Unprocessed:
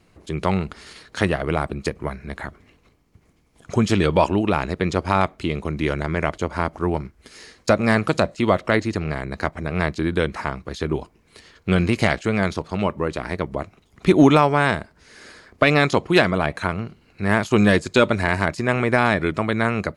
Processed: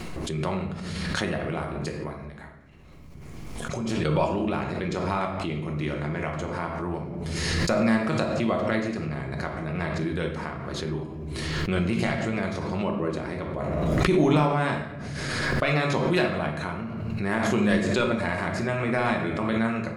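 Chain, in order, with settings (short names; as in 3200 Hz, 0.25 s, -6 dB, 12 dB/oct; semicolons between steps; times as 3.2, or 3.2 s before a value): 2.14–4.05 compressor, threshold -32 dBFS, peak gain reduction 17 dB; 12.83–13.38 bell 300 Hz +5 dB 1.4 oct; shoebox room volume 240 m³, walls mixed, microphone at 0.98 m; backwards sustainer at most 21 dB/s; gain -10.5 dB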